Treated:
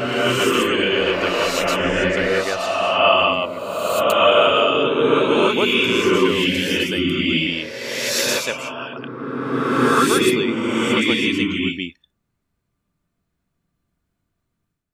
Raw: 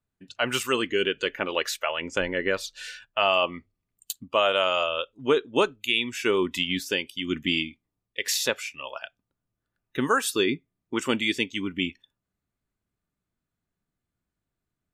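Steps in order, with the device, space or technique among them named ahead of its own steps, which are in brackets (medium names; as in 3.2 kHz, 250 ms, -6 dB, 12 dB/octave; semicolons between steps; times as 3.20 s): reverse reverb (reverse; reverberation RT60 2.6 s, pre-delay 111 ms, DRR -8 dB; reverse)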